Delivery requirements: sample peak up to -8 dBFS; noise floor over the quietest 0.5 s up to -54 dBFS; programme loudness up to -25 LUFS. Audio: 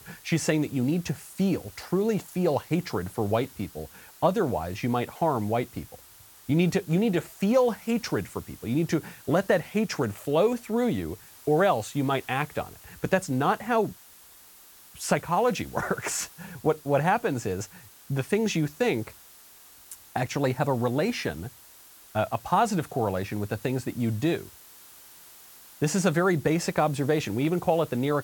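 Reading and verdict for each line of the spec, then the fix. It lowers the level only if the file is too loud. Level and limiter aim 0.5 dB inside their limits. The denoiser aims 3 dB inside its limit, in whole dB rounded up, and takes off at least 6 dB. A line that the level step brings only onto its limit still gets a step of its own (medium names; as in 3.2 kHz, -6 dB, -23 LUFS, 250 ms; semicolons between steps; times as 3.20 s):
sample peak -10.0 dBFS: pass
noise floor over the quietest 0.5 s -52 dBFS: fail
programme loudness -27.0 LUFS: pass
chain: noise reduction 6 dB, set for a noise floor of -52 dBFS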